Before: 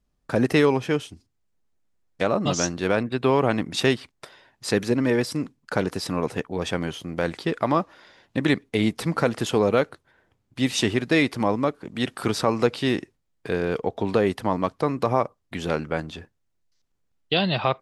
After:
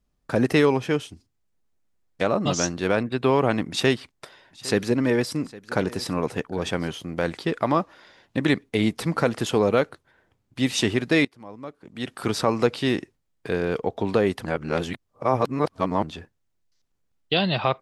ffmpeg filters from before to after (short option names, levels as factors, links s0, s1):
-filter_complex "[0:a]asettb=1/sr,asplit=3[s0][s1][s2];[s0]atrim=end=3.704[s3];[s1]atrim=start=3.7:end=6.92,asetpts=PTS-STARTPTS,afade=t=in:d=0.004:c=qsin,afade=t=out:st=3.216:d=0.004:c=qsin,aecho=1:1:808:0.1,atrim=end_sample=142002[s4];[s2]atrim=start=6.916[s5];[s3][s4]acrossfade=d=0.004:c1=hsin:c2=qsin[s6];[s6][s5]acrossfade=d=0.004:c1=qsin:c2=hsin,asplit=4[s7][s8][s9][s10];[s7]atrim=end=11.25,asetpts=PTS-STARTPTS,afade=t=out:st=11.246:d=0.004:c=hsin:silence=0.0749894[s11];[s8]atrim=start=11.25:end=14.452,asetpts=PTS-STARTPTS,afade=t=in:d=1.1:c=qua:silence=0.0749894[s12];[s9]atrim=start=14.448:end=16.032,asetpts=PTS-STARTPTS,areverse[s13];[s10]atrim=start=16.028[s14];[s11][s12]concat=n=2:v=0:a=1[s15];[s15][s13]acrossfade=d=0.004:c1=hsin:c2=hsin[s16];[s16][s14]acrossfade=d=0.004:c1=hsin:c2=hsin"